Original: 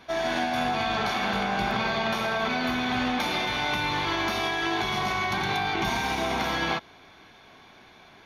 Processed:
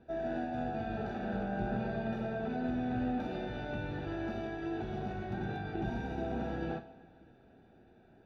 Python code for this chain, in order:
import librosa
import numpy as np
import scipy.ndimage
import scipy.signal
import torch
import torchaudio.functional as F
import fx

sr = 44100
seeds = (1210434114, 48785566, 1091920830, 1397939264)

y = np.convolve(x, np.full(41, 1.0 / 41))[:len(x)]
y = fx.rev_double_slope(y, sr, seeds[0], early_s=0.51, late_s=2.9, knee_db=-17, drr_db=7.0)
y = y * 10.0 ** (-3.0 / 20.0)